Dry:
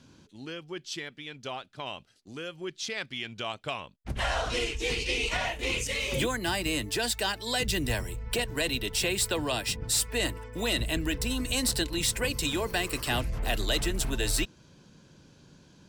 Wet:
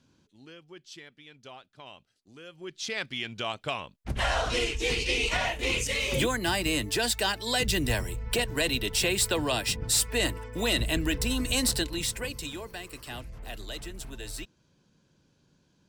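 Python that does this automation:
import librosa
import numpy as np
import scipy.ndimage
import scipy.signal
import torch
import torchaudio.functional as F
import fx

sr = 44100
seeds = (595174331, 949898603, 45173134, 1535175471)

y = fx.gain(x, sr, db=fx.line((2.39, -9.5), (2.94, 2.0), (11.63, 2.0), (12.77, -11.0)))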